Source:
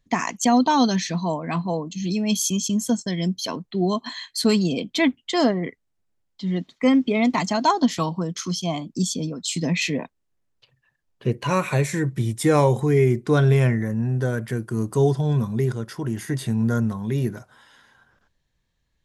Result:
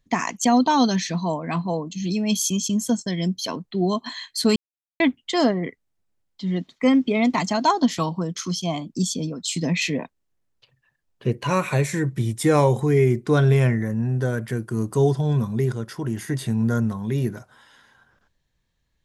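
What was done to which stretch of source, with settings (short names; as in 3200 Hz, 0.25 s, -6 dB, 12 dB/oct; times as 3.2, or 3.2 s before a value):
4.56–5 mute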